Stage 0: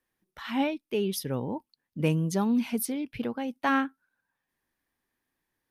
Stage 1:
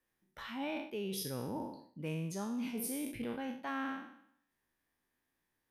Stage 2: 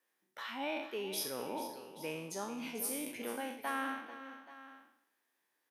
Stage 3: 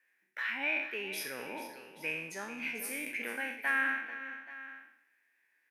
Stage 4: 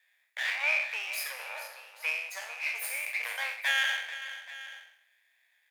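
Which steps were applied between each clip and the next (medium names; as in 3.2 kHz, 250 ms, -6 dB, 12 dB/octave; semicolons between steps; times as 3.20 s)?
spectral sustain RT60 0.69 s; reverse; compression 6:1, threshold -32 dBFS, peak gain reduction 12 dB; reverse; band-stop 4.3 kHz, Q 28; trim -4 dB
high-pass 390 Hz 12 dB/octave; on a send: multi-tap echo 441/830 ms -12.5/-16.5 dB; on the sum: trim +3 dB
high-order bell 2 kHz +15.5 dB 1 oct; trim -3 dB
comb filter that takes the minimum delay 0.42 ms; steep high-pass 580 Hz 48 dB/octave; trim +5.5 dB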